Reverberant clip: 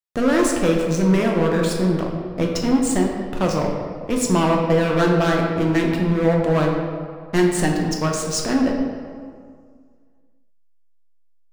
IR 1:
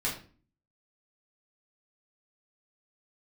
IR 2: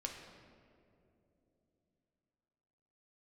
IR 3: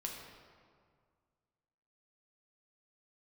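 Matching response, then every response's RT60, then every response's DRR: 3; 0.40 s, no single decay rate, 2.0 s; -5.0 dB, 1.0 dB, -0.5 dB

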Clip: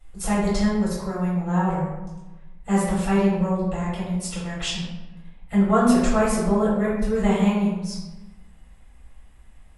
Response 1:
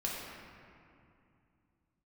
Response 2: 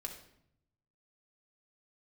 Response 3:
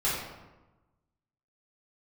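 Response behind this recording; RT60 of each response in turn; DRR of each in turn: 3; 2.5 s, 0.70 s, 1.1 s; -5.0 dB, 1.5 dB, -10.5 dB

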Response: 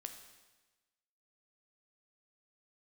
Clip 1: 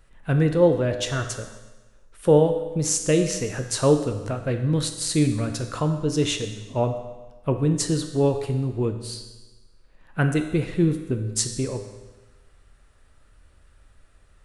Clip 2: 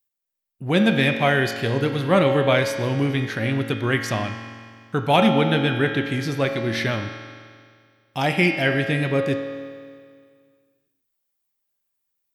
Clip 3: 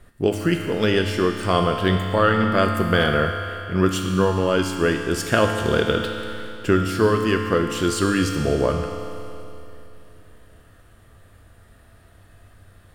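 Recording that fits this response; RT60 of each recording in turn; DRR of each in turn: 1; 1.2 s, 2.0 s, 3.0 s; 6.0 dB, 3.5 dB, 2.5 dB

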